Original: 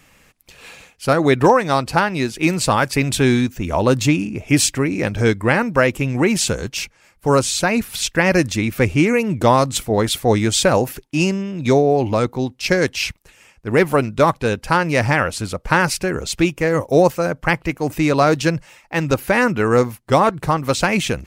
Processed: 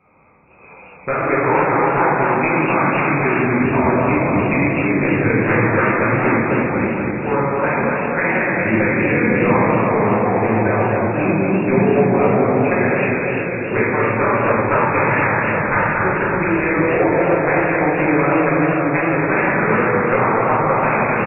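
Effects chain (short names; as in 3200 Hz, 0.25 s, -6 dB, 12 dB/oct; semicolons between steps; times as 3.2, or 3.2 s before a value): Wiener smoothing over 25 samples; HPF 69 Hz; tilt shelf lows -8.5 dB, about 690 Hz; de-hum 134.8 Hz, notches 33; compressor 10:1, threshold -22 dBFS, peak gain reduction 16 dB; brick-wall FIR low-pass 2600 Hz; outdoor echo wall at 88 m, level -7 dB; reverb RT60 2.5 s, pre-delay 5 ms, DRR -9 dB; warbling echo 0.244 s, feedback 59%, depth 149 cents, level -5 dB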